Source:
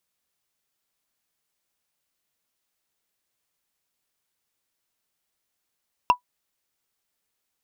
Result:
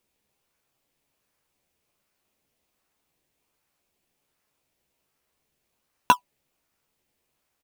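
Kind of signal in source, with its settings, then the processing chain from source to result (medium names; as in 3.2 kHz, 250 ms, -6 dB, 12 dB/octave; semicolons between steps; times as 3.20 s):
wood hit, lowest mode 985 Hz, decay 0.10 s, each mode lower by 8.5 dB, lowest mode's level -8 dB
peaking EQ 2.5 kHz +5.5 dB 0.5 oct; in parallel at -4.5 dB: decimation with a swept rate 22×, swing 100% 1.3 Hz; on the sum: doubling 14 ms -8 dB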